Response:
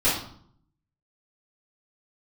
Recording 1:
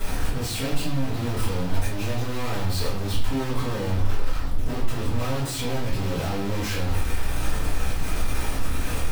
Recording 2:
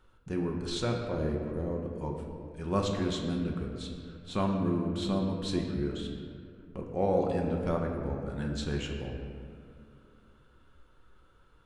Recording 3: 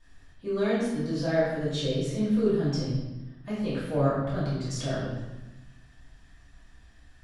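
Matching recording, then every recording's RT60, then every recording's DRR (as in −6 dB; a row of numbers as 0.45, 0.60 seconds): 1; 0.60, 2.4, 1.1 seconds; −13.0, 0.5, −12.5 decibels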